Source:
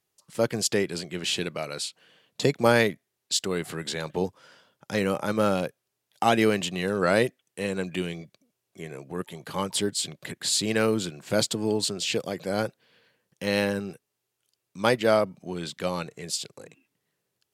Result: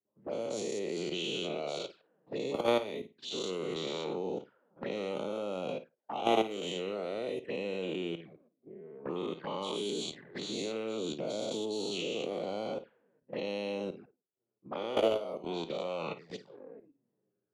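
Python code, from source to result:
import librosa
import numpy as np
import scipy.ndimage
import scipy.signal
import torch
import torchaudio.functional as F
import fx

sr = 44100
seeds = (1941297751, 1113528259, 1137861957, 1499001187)

y = fx.spec_dilate(x, sr, span_ms=240)
y = scipy.signal.sosfilt(scipy.signal.butter(2, 250.0, 'highpass', fs=sr, output='sos'), y)
y = fx.env_lowpass(y, sr, base_hz=2700.0, full_db=-16.0)
y = fx.lowpass(y, sr, hz=3800.0, slope=6)
y = fx.high_shelf(y, sr, hz=2600.0, db=-5.0)
y = fx.level_steps(y, sr, step_db=16)
y = fx.room_flutter(y, sr, wall_m=9.2, rt60_s=0.24)
y = fx.env_flanger(y, sr, rest_ms=9.9, full_db=-30.5)
y = fx.env_lowpass(y, sr, base_hz=330.0, full_db=-28.0)
y = fx.band_squash(y, sr, depth_pct=40)
y = y * 10.0 ** (-2.5 / 20.0)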